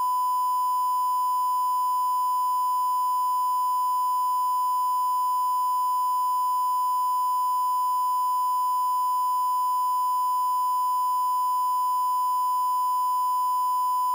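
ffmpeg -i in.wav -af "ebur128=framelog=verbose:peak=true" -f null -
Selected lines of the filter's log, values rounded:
Integrated loudness:
  I:         -24.2 LUFS
  Threshold: -34.2 LUFS
Loudness range:
  LRA:         0.0 LU
  Threshold: -44.2 LUFS
  LRA low:   -24.2 LUFS
  LRA high:  -24.2 LUFS
True peak:
  Peak:      -21.5 dBFS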